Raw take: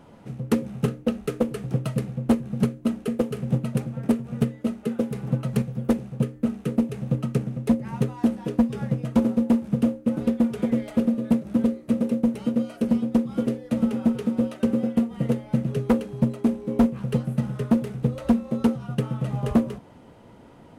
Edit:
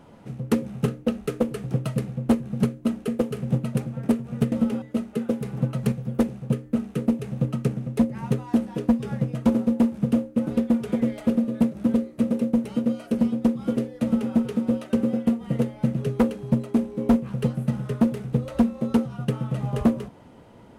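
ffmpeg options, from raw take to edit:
ffmpeg -i in.wav -filter_complex "[0:a]asplit=3[link_01][link_02][link_03];[link_01]atrim=end=4.522[link_04];[link_02]atrim=start=13.728:end=14.032[link_05];[link_03]atrim=start=4.518[link_06];[link_04][link_05]acrossfade=duration=0.004:curve1=hsin:curve2=hsin[link_07];[link_07][link_06]acrossfade=duration=0.004:curve1=hsin:curve2=hsin" out.wav

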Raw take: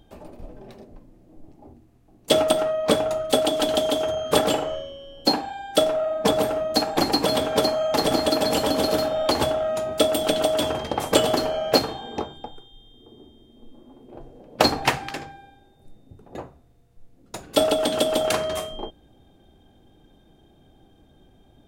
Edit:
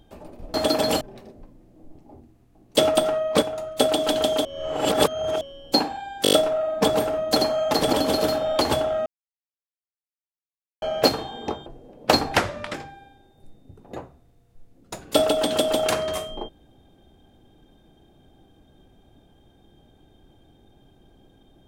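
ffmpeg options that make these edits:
ffmpeg -i in.wav -filter_complex "[0:a]asplit=19[link_01][link_02][link_03][link_04][link_05][link_06][link_07][link_08][link_09][link_10][link_11][link_12][link_13][link_14][link_15][link_16][link_17][link_18][link_19];[link_01]atrim=end=0.542[link_20];[link_02]atrim=start=8.158:end=8.632[link_21];[link_03]atrim=start=0.538:end=2.952[link_22];[link_04]atrim=start=2.948:end=3.322,asetpts=PTS-STARTPTS,volume=-6dB[link_23];[link_05]atrim=start=3.318:end=3.982[link_24];[link_06]atrim=start=3.978:end=4.942,asetpts=PTS-STARTPTS,areverse[link_25];[link_07]atrim=start=4.938:end=5.782[link_26];[link_08]atrim=start=5.758:end=5.782[link_27];[link_09]atrim=start=5.758:end=5.782[link_28];[link_10]atrim=start=5.758:end=5.782[link_29];[link_11]atrim=start=5.758:end=5.782[link_30];[link_12]atrim=start=5.758:end=6.792[link_31];[link_13]atrim=start=7.588:end=8.162[link_32];[link_14]atrim=start=8.628:end=9.76,asetpts=PTS-STARTPTS,afade=type=out:start_time=1.128:duration=0.004:curve=hsin[link_33];[link_15]atrim=start=9.76:end=11.52,asetpts=PTS-STARTPTS,volume=0[link_34];[link_16]atrim=start=11.52:end=12.362,asetpts=PTS-STARTPTS,afade=type=in:duration=0.004:curve=hsin[link_35];[link_17]atrim=start=14.168:end=14.884[link_36];[link_18]atrim=start=14.88:end=15.16,asetpts=PTS-STARTPTS,asetrate=33075,aresample=44100[link_37];[link_19]atrim=start=15.156[link_38];[link_20][link_21]acrossfade=duration=0.004:curve1=hsin:curve2=hsin[link_39];[link_39][link_22]acrossfade=duration=0.004:curve1=hsin:curve2=hsin[link_40];[link_40][link_23]acrossfade=duration=0.004:curve1=hsin:curve2=hsin[link_41];[link_41][link_24]acrossfade=duration=0.004:curve1=hsin:curve2=hsin[link_42];[link_42][link_25]acrossfade=duration=0.004:curve1=hsin:curve2=hsin[link_43];[link_43][link_26]acrossfade=duration=0.004:curve1=hsin:curve2=hsin[link_44];[link_44][link_27]acrossfade=duration=0.004:curve1=hsin:curve2=hsin[link_45];[link_45][link_28]acrossfade=duration=0.004:curve1=hsin:curve2=hsin[link_46];[link_46][link_29]acrossfade=duration=0.004:curve1=hsin:curve2=hsin[link_47];[link_47][link_30]acrossfade=duration=0.004:curve1=hsin:curve2=hsin[link_48];[link_48][link_31]acrossfade=duration=0.004:curve1=hsin:curve2=hsin[link_49];[link_49][link_32]acrossfade=duration=0.004:curve1=hsin:curve2=hsin[link_50];[link_33][link_34][link_35]concat=n=3:v=0:a=1[link_51];[link_50][link_51]acrossfade=duration=0.004:curve1=hsin:curve2=hsin[link_52];[link_52][link_36]acrossfade=duration=0.004:curve1=hsin:curve2=hsin[link_53];[link_53][link_37]acrossfade=duration=0.004:curve1=hsin:curve2=hsin[link_54];[link_54][link_38]acrossfade=duration=0.004:curve1=hsin:curve2=hsin" out.wav

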